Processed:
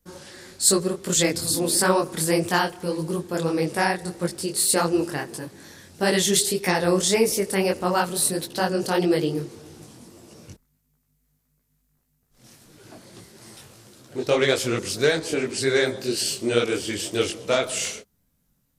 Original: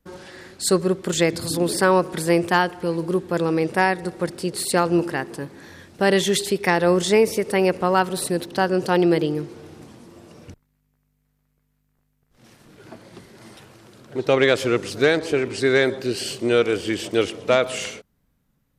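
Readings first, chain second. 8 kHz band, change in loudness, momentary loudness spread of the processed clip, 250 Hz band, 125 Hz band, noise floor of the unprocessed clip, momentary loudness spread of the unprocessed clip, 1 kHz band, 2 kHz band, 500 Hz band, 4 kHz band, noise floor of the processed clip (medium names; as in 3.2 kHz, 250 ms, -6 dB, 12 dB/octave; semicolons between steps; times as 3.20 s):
+6.5 dB, -1.5 dB, 10 LU, -3.0 dB, -2.5 dB, -70 dBFS, 9 LU, -3.5 dB, -3.0 dB, -3.5 dB, +1.5 dB, -70 dBFS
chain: tone controls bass +2 dB, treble +11 dB; detune thickener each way 57 cents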